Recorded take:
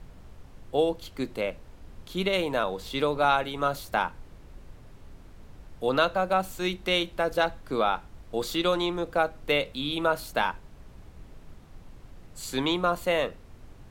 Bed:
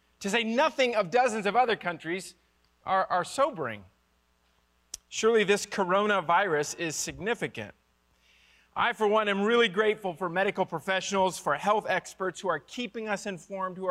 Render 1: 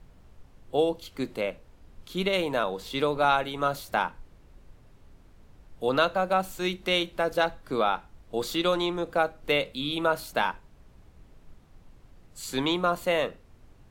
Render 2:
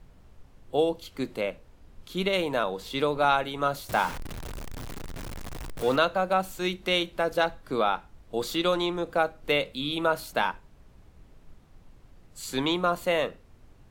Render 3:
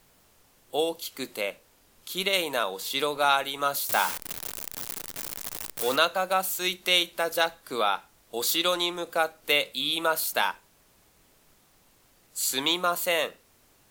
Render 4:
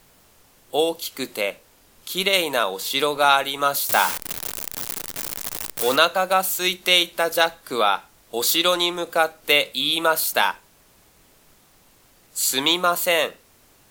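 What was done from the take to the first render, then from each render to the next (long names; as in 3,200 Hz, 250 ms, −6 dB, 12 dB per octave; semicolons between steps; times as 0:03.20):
noise reduction from a noise print 6 dB
0:03.89–0:05.96: converter with a step at zero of −31.5 dBFS
RIAA equalisation recording
level +6 dB; brickwall limiter −2 dBFS, peak gain reduction 1 dB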